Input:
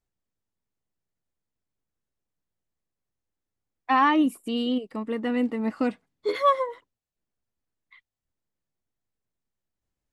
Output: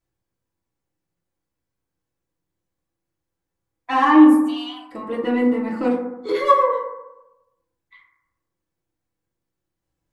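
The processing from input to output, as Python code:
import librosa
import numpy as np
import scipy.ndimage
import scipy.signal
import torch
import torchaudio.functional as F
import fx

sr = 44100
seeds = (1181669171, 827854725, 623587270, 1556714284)

p1 = 10.0 ** (-26.0 / 20.0) * np.tanh(x / 10.0 ** (-26.0 / 20.0))
p2 = x + (p1 * 10.0 ** (-4.0 / 20.0))
p3 = fx.brickwall_highpass(p2, sr, low_hz=580.0, at=(4.44, 4.89))
p4 = fx.rev_fdn(p3, sr, rt60_s=0.97, lf_ratio=1.0, hf_ratio=0.3, size_ms=18.0, drr_db=-5.0)
y = p4 * 10.0 ** (-4.0 / 20.0)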